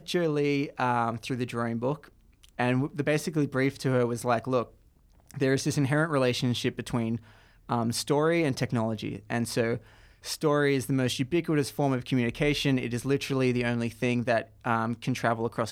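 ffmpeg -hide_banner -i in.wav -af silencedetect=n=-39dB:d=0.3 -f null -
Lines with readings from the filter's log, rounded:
silence_start: 2.05
silence_end: 2.44 | silence_duration: 0.40
silence_start: 4.65
silence_end: 5.30 | silence_duration: 0.65
silence_start: 7.17
silence_end: 7.69 | silence_duration: 0.52
silence_start: 9.77
silence_end: 10.24 | silence_duration: 0.47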